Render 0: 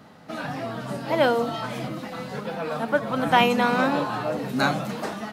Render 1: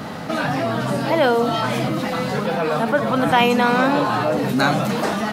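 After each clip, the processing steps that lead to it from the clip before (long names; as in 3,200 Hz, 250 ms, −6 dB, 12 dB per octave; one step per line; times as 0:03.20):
envelope flattener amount 50%
level +1.5 dB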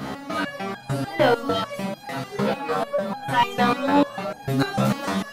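in parallel at −4 dB: hard clipping −15 dBFS, distortion −12 dB
on the sum: step-sequenced resonator 6.7 Hz 67–810 Hz
level +3 dB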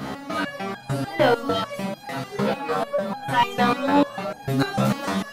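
no processing that can be heard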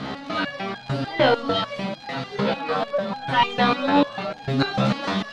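surface crackle 130 per second −31 dBFS
low-pass with resonance 4,000 Hz, resonance Q 1.7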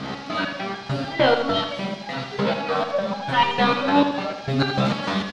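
noise in a band 2,000–5,500 Hz −49 dBFS
repeating echo 81 ms, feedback 52%, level −8.5 dB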